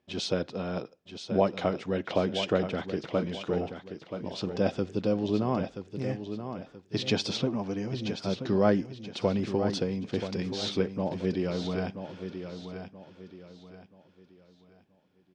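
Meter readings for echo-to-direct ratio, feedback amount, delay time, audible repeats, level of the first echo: -8.5 dB, 34%, 979 ms, 3, -9.0 dB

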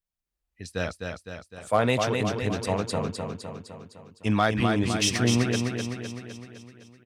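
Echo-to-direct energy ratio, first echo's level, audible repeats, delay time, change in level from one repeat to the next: -3.5 dB, -5.0 dB, 7, 255 ms, -5.0 dB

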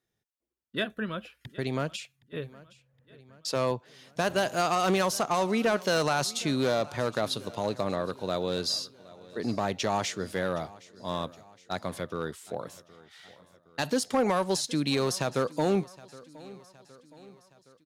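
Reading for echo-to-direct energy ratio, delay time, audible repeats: -19.5 dB, 767 ms, 3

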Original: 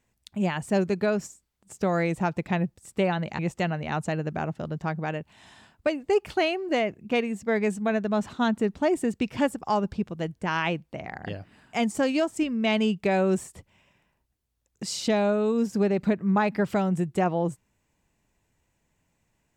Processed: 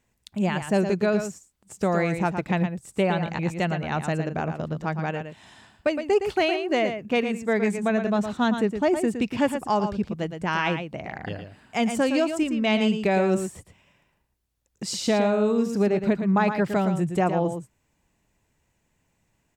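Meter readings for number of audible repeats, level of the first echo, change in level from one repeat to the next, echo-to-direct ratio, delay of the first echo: 1, -8.0 dB, no regular repeats, -8.0 dB, 114 ms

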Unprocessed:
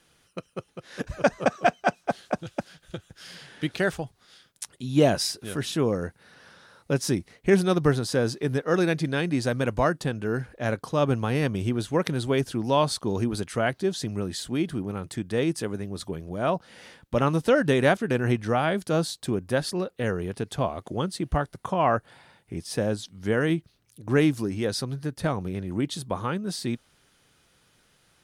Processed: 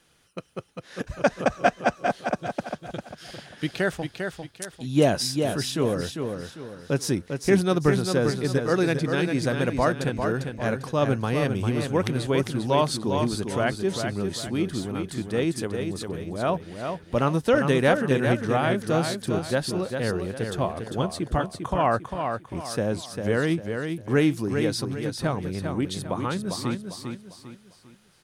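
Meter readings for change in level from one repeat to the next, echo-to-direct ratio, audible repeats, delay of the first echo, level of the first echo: -9.0 dB, -5.5 dB, 4, 399 ms, -6.0 dB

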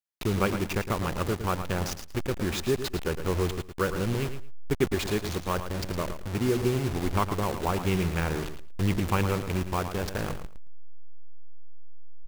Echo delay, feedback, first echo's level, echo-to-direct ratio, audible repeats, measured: 111 ms, 17%, -10.0 dB, -10.0 dB, 2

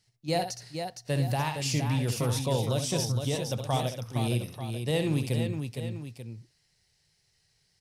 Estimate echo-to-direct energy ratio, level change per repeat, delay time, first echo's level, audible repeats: -3.5 dB, no regular repeats, 66 ms, -8.0 dB, 3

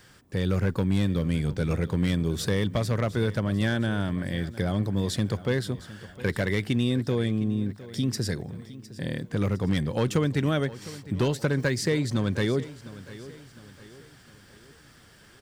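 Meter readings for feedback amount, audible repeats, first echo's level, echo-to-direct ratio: 45%, 3, -17.0 dB, -16.0 dB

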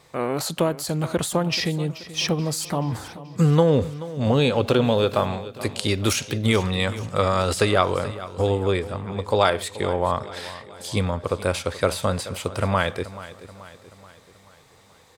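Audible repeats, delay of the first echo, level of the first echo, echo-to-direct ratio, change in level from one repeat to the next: 4, 431 ms, -16.0 dB, -14.5 dB, -5.5 dB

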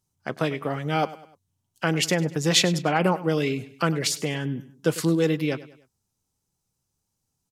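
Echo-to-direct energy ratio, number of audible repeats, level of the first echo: -16.0 dB, 3, -17.0 dB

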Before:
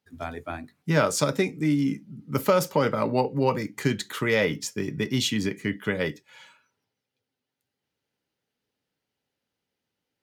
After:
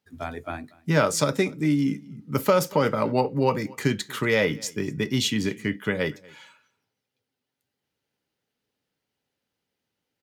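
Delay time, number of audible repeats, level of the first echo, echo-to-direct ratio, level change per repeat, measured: 237 ms, 1, -24.0 dB, -24.0 dB, no regular repeats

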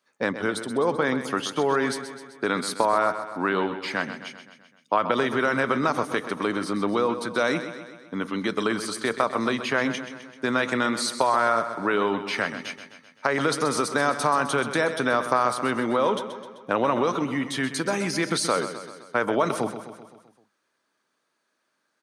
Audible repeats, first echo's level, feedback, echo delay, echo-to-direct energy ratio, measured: 5, -11.0 dB, 57%, 129 ms, -9.5 dB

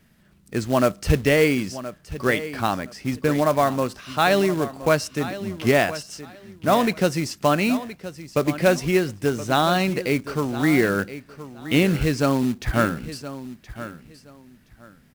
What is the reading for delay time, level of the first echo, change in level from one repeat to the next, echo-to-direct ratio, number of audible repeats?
1021 ms, -14.0 dB, -13.5 dB, -14.0 dB, 2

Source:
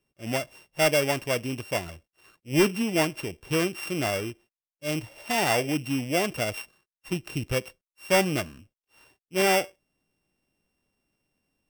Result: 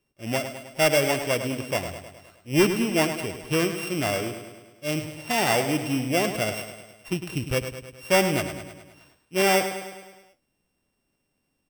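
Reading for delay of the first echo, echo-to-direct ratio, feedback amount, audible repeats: 104 ms, -7.5 dB, 58%, 6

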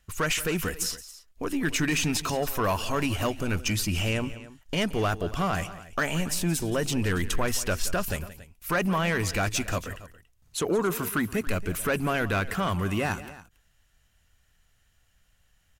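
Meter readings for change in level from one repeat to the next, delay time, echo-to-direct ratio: no regular repeats, 174 ms, -14.0 dB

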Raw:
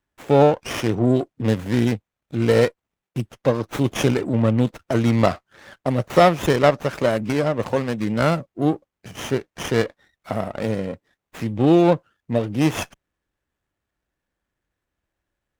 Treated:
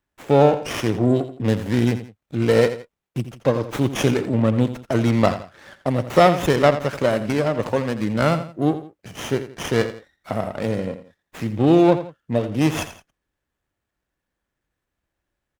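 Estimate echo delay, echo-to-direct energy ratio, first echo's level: 84 ms, -11.5 dB, -12.0 dB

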